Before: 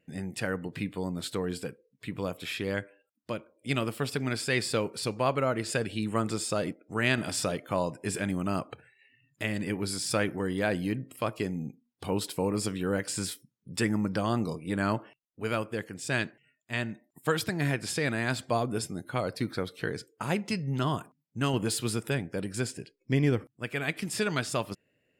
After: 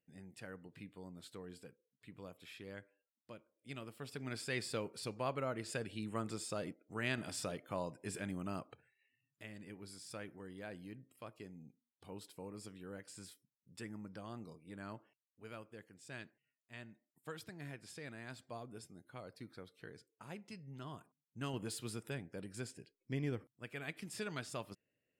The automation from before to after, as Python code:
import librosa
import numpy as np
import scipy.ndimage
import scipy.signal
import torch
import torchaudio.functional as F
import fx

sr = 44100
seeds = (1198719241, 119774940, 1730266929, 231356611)

y = fx.gain(x, sr, db=fx.line((3.93, -18.5), (4.37, -11.5), (8.45, -11.5), (9.5, -20.0), (20.84, -20.0), (21.43, -13.5)))